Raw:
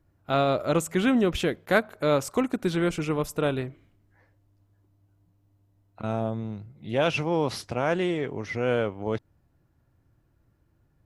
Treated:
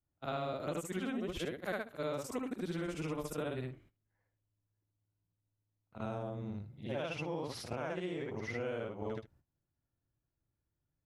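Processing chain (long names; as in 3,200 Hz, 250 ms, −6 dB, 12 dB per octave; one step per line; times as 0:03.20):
every overlapping window played backwards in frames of 156 ms
noise gate −57 dBFS, range −15 dB
downward compressor, threshold −33 dBFS, peak gain reduction 12.5 dB
level −2 dB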